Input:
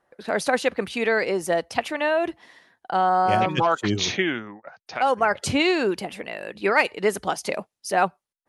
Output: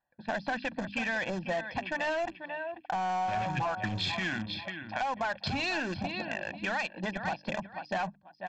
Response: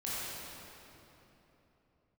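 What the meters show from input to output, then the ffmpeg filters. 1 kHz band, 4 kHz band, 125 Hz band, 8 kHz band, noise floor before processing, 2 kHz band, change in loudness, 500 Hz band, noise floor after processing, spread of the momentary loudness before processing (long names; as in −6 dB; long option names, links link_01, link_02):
−9.5 dB, −7.0 dB, −5.0 dB, −16.0 dB, −85 dBFS, −7.0 dB, −10.0 dB, −12.5 dB, −61 dBFS, 11 LU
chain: -filter_complex "[0:a]afwtdn=0.02,aecho=1:1:490|980:0.2|0.0379,aresample=11025,aresample=44100,asplit=2[link_01][link_02];[link_02]aeval=exprs='val(0)*gte(abs(val(0)),0.0668)':channel_layout=same,volume=-9.5dB[link_03];[link_01][link_03]amix=inputs=2:normalize=0,equalizer=frequency=600:width=0.39:gain=-4.5,alimiter=limit=-16dB:level=0:latency=1:release=33,aecho=1:1:1.2:0.86,aresample=16000,asoftclip=type=tanh:threshold=-20dB,aresample=44100,aphaser=in_gain=1:out_gain=1:delay=4.8:decay=0.23:speed=0.81:type=sinusoidal,acompressor=threshold=-29dB:ratio=6,bandreject=frequency=50:width_type=h:width=6,bandreject=frequency=100:width_type=h:width=6,bandreject=frequency=150:width_type=h:width=6,bandreject=frequency=200:width_type=h:width=6,bandreject=frequency=250:width_type=h:width=6,bandreject=frequency=300:width_type=h:width=6"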